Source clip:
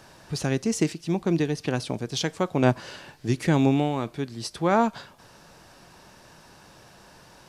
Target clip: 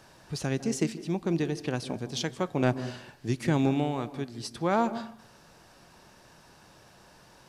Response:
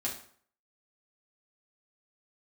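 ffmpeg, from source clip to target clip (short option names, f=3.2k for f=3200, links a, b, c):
-filter_complex "[0:a]asoftclip=type=hard:threshold=-11dB,asplit=2[a][b];[1:a]atrim=start_sample=2205,lowpass=f=1.1k:p=1,adelay=149[c];[b][c]afir=irnorm=-1:irlink=0,volume=-14.5dB[d];[a][d]amix=inputs=2:normalize=0,volume=-4.5dB"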